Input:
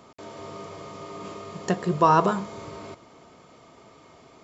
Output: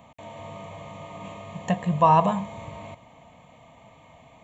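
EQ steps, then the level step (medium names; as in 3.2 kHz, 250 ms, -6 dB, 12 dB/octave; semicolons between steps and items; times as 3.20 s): bass shelf 480 Hz +3 dB; static phaser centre 1.4 kHz, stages 6; +2.5 dB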